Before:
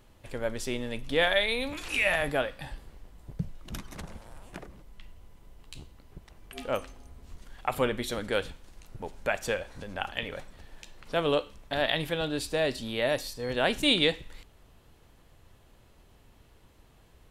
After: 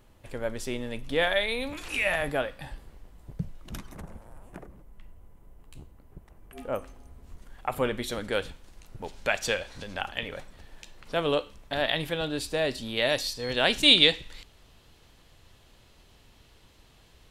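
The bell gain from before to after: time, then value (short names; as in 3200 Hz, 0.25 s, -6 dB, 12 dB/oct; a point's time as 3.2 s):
bell 4200 Hz 1.9 oct
-2 dB
from 3.92 s -13 dB
from 6.86 s -5.5 dB
from 7.85 s +0.5 dB
from 9.04 s +9 dB
from 10.01 s +1 dB
from 12.97 s +8.5 dB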